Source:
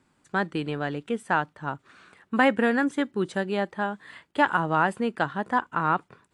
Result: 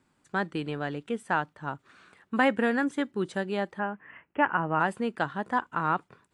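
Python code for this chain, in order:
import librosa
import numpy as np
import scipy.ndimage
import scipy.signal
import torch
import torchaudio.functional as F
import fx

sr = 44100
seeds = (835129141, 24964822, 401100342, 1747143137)

y = fx.steep_lowpass(x, sr, hz=2900.0, slope=96, at=(3.78, 4.79), fade=0.02)
y = y * librosa.db_to_amplitude(-3.0)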